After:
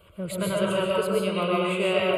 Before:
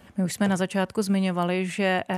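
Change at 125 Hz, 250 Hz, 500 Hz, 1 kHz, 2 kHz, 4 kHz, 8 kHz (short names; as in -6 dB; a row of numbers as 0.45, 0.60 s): -4.5, -4.5, +4.0, -0.5, -1.0, +3.5, -2.5 dB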